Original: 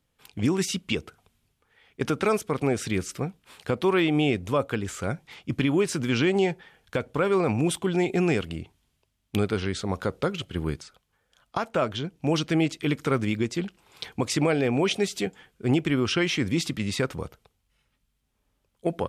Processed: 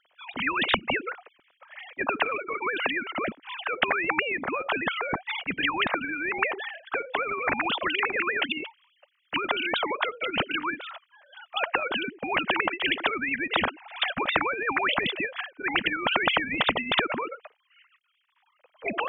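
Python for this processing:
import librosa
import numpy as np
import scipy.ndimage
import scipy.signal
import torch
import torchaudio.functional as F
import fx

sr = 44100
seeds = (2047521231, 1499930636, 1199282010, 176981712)

y = fx.sine_speech(x, sr)
y = fx.spectral_comp(y, sr, ratio=10.0)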